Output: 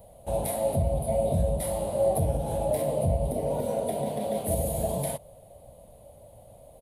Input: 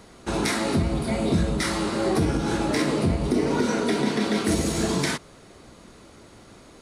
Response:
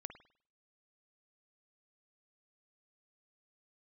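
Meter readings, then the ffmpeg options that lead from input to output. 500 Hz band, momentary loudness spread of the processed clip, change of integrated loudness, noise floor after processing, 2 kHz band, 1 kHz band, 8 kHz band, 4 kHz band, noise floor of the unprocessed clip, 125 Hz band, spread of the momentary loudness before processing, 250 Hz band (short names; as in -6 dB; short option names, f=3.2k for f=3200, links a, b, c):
+0.5 dB, 5 LU, -3.5 dB, -52 dBFS, -21.0 dB, -3.5 dB, -3.5 dB, -17.0 dB, -50 dBFS, -2.0 dB, 3 LU, -11.5 dB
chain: -af "firequalizer=gain_entry='entry(120,0);entry(200,-10);entry(360,-19);entry(570,9);entry(1300,-26);entry(3100,-13);entry(5600,-25);entry(11000,9)':delay=0.05:min_phase=1"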